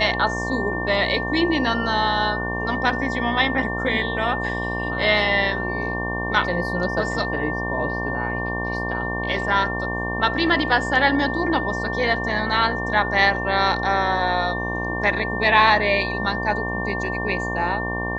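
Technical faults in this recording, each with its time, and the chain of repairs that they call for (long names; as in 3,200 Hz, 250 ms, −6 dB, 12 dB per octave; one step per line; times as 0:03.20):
mains buzz 60 Hz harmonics 19 −28 dBFS
whistle 1,800 Hz −27 dBFS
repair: hum removal 60 Hz, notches 19
notch filter 1,800 Hz, Q 30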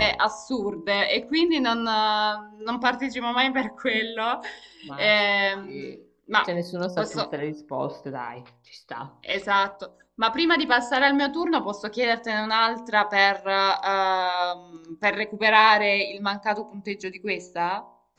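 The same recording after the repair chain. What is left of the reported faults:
none of them is left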